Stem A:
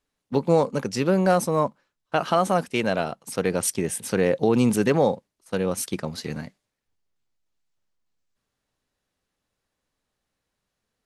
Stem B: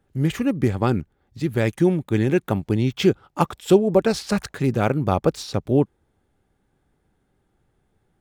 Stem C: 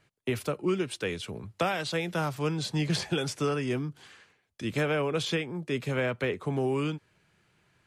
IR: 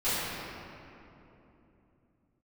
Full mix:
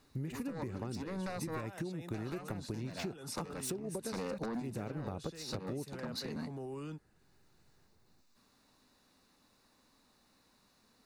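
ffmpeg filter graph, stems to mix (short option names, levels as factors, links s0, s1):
-filter_complex "[0:a]equalizer=f=250:t=o:w=1:g=11,equalizer=f=1000:t=o:w=1:g=8,equalizer=f=4000:t=o:w=1:g=10,acompressor=threshold=0.178:ratio=12,aeval=exprs='0.237*sin(PI/2*1.41*val(0)/0.237)':c=same,volume=0.841[s0];[1:a]highshelf=f=12000:g=-7,acrossover=split=480[s1][s2];[s2]acompressor=threshold=0.0562:ratio=6[s3];[s1][s3]amix=inputs=2:normalize=0,volume=0.531[s4];[2:a]equalizer=f=2300:w=6.7:g=-12,alimiter=level_in=1.33:limit=0.0631:level=0:latency=1:release=20,volume=0.75,volume=0.376,asplit=2[s5][s6];[s6]apad=whole_len=487537[s7];[s0][s7]sidechaincompress=threshold=0.00112:ratio=8:attack=41:release=284[s8];[s8][s4]amix=inputs=2:normalize=0,acompressor=threshold=0.0447:ratio=2.5,volume=1[s9];[s5][s9]amix=inputs=2:normalize=0,highshelf=f=11000:g=8,bandreject=f=3200:w=5,acompressor=threshold=0.0141:ratio=6"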